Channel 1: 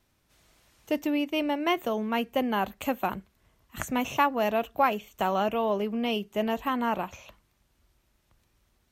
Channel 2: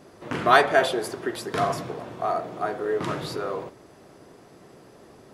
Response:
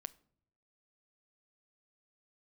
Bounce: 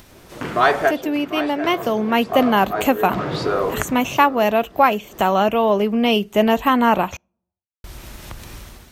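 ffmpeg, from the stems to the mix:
-filter_complex "[0:a]acompressor=mode=upward:threshold=-31dB:ratio=2.5,volume=0.5dB,asplit=3[a][b][c];[a]atrim=end=7.17,asetpts=PTS-STARTPTS,afade=t=out:st=7.166:d=0.004:c=hsin[d];[b]atrim=start=7.17:end=7.84,asetpts=PTS-STARTPTS,volume=0[e];[c]atrim=start=7.84,asetpts=PTS-STARTPTS,afade=t=in:d=0.004:c=hsin[f];[d][e][f]concat=n=3:v=0:a=1,asplit=3[g][h][i];[h]volume=-16dB[j];[1:a]asoftclip=type=tanh:threshold=-4.5dB,lowpass=5.5k,adynamicequalizer=threshold=0.0126:dfrequency=2100:dqfactor=0.7:tfrequency=2100:tqfactor=0.7:attack=5:release=100:ratio=0.375:range=2.5:mode=cutabove:tftype=highshelf,adelay=100,volume=1dB,asplit=2[k][l];[l]volume=-16dB[m];[i]apad=whole_len=239778[n];[k][n]sidechaincompress=threshold=-37dB:ratio=5:attack=8.8:release=224[o];[2:a]atrim=start_sample=2205[p];[j][p]afir=irnorm=-1:irlink=0[q];[m]aecho=0:1:746:1[r];[g][o][q][r]amix=inputs=4:normalize=0,dynaudnorm=f=570:g=3:m=12.5dB"

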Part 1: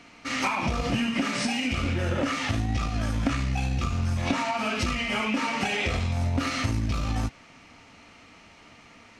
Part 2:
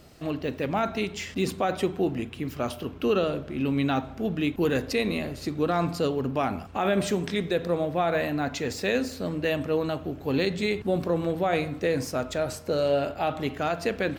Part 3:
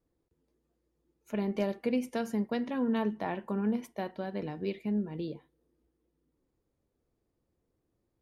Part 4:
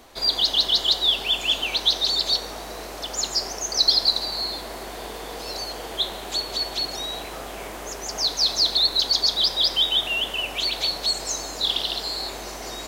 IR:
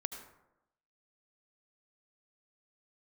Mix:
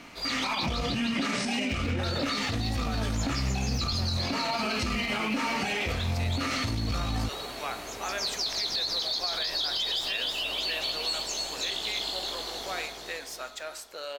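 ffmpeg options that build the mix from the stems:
-filter_complex "[0:a]volume=3dB[a];[1:a]highpass=1.1k,adelay=1250,volume=-2.5dB[b];[2:a]volume=-3dB[c];[3:a]flanger=delay=16.5:depth=2.4:speed=0.79,volume=-4.5dB,asplit=3[d][e][f];[d]atrim=end=0.66,asetpts=PTS-STARTPTS,afade=t=out:st=0.656:d=0.004:c=hsin[g];[e]atrim=start=0.66:end=2.03,asetpts=PTS-STARTPTS,volume=0[h];[f]atrim=start=2.03,asetpts=PTS-STARTPTS,afade=t=in:d=0.004:c=hsin[i];[g][h][i]concat=n=3:v=0:a=1,asplit=2[j][k];[k]volume=-4dB,aecho=0:1:312|624|936|1248|1560|1872|2184|2496:1|0.55|0.303|0.166|0.0915|0.0503|0.0277|0.0152[l];[a][b][c][j][l]amix=inputs=5:normalize=0,alimiter=limit=-20.5dB:level=0:latency=1:release=70"

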